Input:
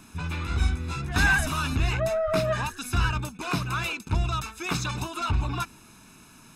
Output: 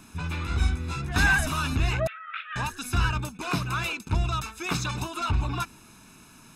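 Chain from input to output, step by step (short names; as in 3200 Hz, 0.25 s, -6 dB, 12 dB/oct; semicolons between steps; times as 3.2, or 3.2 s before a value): 2.07–2.56 Chebyshev band-pass 1300–3400 Hz, order 4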